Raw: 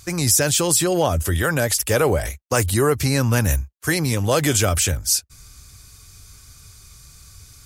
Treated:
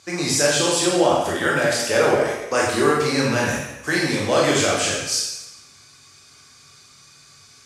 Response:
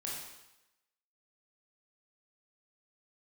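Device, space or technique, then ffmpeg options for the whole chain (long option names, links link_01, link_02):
supermarket ceiling speaker: -filter_complex "[0:a]highpass=250,lowpass=5600[link_01];[1:a]atrim=start_sample=2205[link_02];[link_01][link_02]afir=irnorm=-1:irlink=0,volume=2.5dB"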